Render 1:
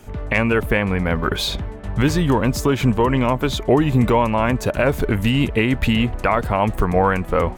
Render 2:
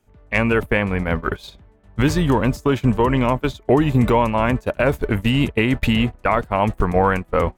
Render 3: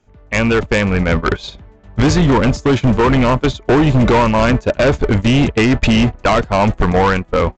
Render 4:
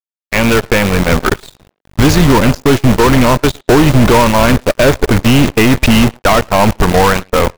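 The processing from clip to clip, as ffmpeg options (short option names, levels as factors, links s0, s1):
-af "agate=range=0.0891:threshold=0.112:ratio=16:detection=peak"
-af "dynaudnorm=f=150:g=11:m=3.76,aresample=16000,volume=4.73,asoftclip=hard,volume=0.211,aresample=44100,volume=1.78"
-filter_complex "[0:a]acrusher=bits=3:dc=4:mix=0:aa=0.000001,asplit=2[s0][s1];[s1]adelay=110,highpass=300,lowpass=3400,asoftclip=type=hard:threshold=0.211,volume=0.2[s2];[s0][s2]amix=inputs=2:normalize=0,aeval=exprs='0.631*(cos(1*acos(clip(val(0)/0.631,-1,1)))-cos(1*PI/2))+0.141*(cos(6*acos(clip(val(0)/0.631,-1,1)))-cos(6*PI/2))+0.0708*(cos(7*acos(clip(val(0)/0.631,-1,1)))-cos(7*PI/2))':c=same"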